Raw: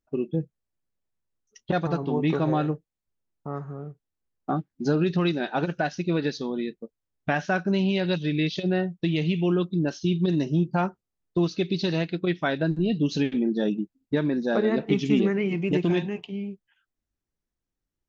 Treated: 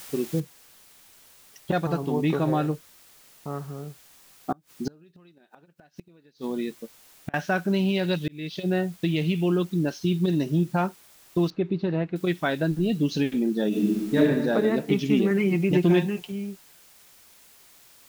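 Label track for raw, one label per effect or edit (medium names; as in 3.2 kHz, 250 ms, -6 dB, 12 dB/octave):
0.400000	0.400000	noise floor step -43 dB -54 dB
4.520000	7.340000	inverted gate shuts at -19 dBFS, range -31 dB
8.280000	8.720000	fade in
11.500000	12.160000	low-pass 1.5 kHz
13.680000	14.180000	reverb throw, RT60 1.4 s, DRR -7 dB
15.300000	16.320000	comb 5.6 ms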